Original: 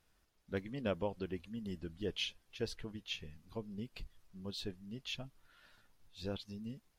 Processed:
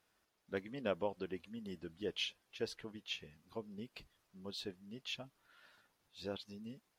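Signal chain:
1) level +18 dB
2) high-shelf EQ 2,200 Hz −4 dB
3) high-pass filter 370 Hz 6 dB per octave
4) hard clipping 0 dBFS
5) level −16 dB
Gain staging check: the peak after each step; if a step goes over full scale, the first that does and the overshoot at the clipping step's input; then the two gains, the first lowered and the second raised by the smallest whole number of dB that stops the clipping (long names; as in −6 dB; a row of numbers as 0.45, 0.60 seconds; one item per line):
−5.5, −6.0, −5.5, −5.5, −21.5 dBFS
no step passes full scale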